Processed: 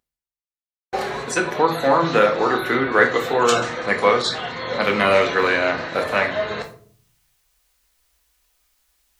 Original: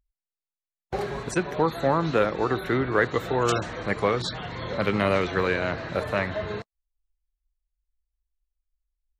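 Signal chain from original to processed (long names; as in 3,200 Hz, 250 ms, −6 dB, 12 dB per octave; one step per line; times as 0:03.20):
high-pass filter 630 Hz 6 dB per octave
downward expander −36 dBFS
reversed playback
upward compression, threshold −34 dBFS
reversed playback
convolution reverb RT60 0.50 s, pre-delay 4 ms, DRR 3 dB
level +7.5 dB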